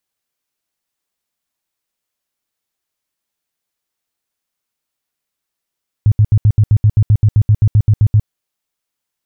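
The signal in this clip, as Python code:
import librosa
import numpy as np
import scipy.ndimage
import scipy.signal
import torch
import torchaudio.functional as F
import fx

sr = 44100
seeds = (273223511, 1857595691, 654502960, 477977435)

y = fx.tone_burst(sr, hz=106.0, cycles=6, every_s=0.13, bursts=17, level_db=-5.5)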